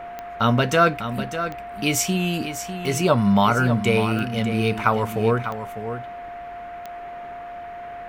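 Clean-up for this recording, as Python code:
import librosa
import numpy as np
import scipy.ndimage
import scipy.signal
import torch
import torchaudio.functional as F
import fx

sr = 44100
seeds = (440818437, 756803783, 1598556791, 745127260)

y = fx.fix_declick_ar(x, sr, threshold=10.0)
y = fx.notch(y, sr, hz=700.0, q=30.0)
y = fx.noise_reduce(y, sr, print_start_s=6.41, print_end_s=6.91, reduce_db=30.0)
y = fx.fix_echo_inverse(y, sr, delay_ms=599, level_db=-10.0)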